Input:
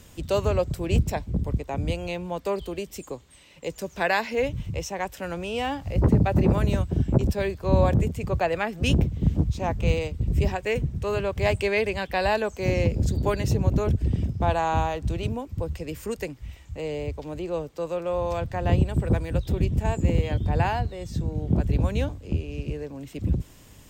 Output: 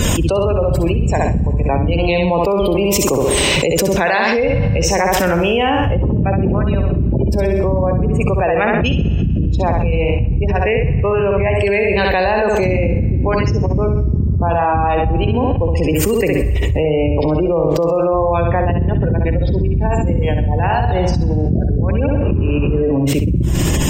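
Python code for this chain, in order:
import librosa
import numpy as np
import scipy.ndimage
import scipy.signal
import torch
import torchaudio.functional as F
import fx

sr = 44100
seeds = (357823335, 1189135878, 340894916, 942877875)

y = fx.spec_gate(x, sr, threshold_db=-25, keep='strong')
y = fx.peak_eq(y, sr, hz=1900.0, db=-8.0, octaves=1.1, at=(7.29, 8.12))
y = fx.dmg_noise_band(y, sr, seeds[0], low_hz=200.0, high_hz=1200.0, level_db=-57.0, at=(22.22, 22.78), fade=0.02)
y = fx.echo_feedback(y, sr, ms=65, feedback_pct=37, wet_db=-5)
y = fx.rev_schroeder(y, sr, rt60_s=1.6, comb_ms=30, drr_db=15.0)
y = fx.env_flatten(y, sr, amount_pct=100)
y = y * librosa.db_to_amplitude(-1.5)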